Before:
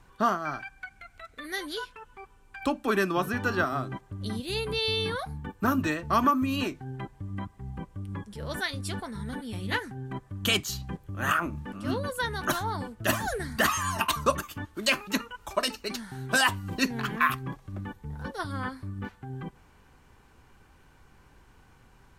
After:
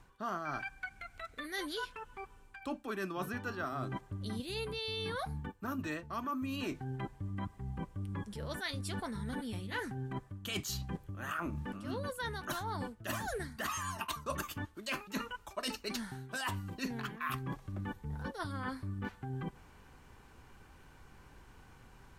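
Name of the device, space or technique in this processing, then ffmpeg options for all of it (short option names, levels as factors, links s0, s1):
compression on the reversed sound: -af "areverse,acompressor=threshold=0.0178:ratio=10,areverse"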